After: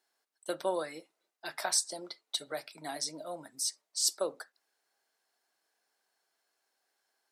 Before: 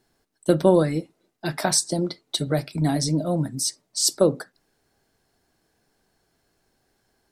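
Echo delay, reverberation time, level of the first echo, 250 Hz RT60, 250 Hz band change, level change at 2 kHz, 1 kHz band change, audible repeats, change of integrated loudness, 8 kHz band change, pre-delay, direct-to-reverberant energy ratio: no echo audible, no reverb audible, no echo audible, no reverb audible, −23.0 dB, −7.5 dB, −9.5 dB, no echo audible, −11.5 dB, −7.5 dB, no reverb audible, no reverb audible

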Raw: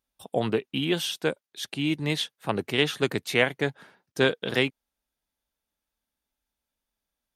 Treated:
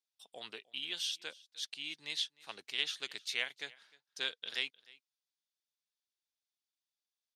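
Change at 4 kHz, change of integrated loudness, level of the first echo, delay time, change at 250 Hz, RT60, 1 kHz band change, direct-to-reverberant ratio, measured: −6.0 dB, −11.5 dB, −23.0 dB, 306 ms, −30.5 dB, no reverb audible, −20.0 dB, no reverb audible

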